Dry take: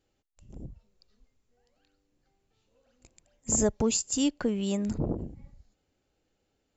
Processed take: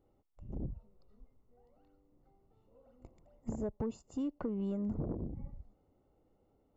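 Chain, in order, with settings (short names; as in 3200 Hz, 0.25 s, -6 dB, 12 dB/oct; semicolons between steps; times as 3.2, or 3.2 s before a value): compressor 8:1, threshold -37 dBFS, peak gain reduction 16.5 dB; polynomial smoothing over 65 samples; soft clip -33 dBFS, distortion -19 dB; gain +5.5 dB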